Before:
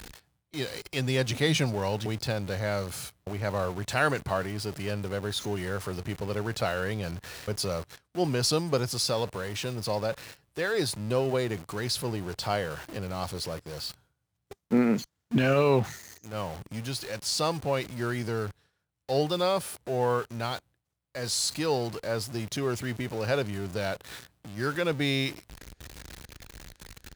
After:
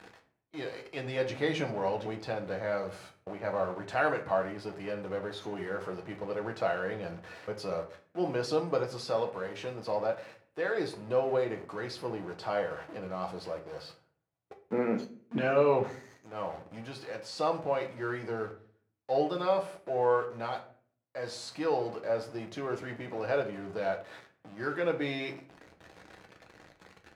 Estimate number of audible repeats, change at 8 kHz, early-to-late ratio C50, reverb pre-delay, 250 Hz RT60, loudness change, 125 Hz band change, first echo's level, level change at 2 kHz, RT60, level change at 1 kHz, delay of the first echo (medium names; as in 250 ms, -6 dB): no echo, under -15 dB, 11.5 dB, 6 ms, 0.75 s, -3.5 dB, -11.0 dB, no echo, -4.0 dB, 0.45 s, -1.0 dB, no echo